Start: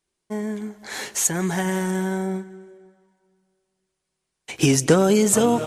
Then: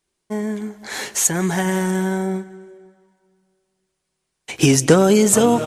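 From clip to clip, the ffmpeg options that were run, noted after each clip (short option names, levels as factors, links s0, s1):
-filter_complex "[0:a]asplit=2[s0][s1];[s1]adelay=192.4,volume=0.0447,highshelf=f=4000:g=-4.33[s2];[s0][s2]amix=inputs=2:normalize=0,volume=1.5"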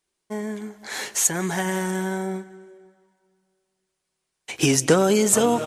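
-af "lowshelf=f=290:g=-6,volume=0.75"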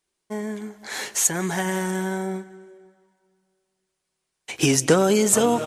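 -af anull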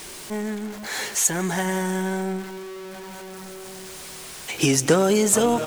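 -af "aeval=exprs='val(0)+0.5*0.0282*sgn(val(0))':c=same,volume=0.891"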